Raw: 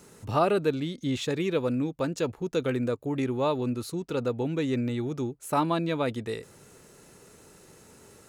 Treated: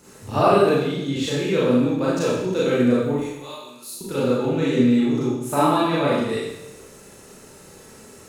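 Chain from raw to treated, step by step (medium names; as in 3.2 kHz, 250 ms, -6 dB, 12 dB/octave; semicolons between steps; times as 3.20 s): 0.78–1.48 s: compression 1.5:1, threshold -33 dBFS, peak gain reduction 3.5 dB; 3.14–4.01 s: differentiator; Schroeder reverb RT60 0.91 s, combs from 29 ms, DRR -8 dB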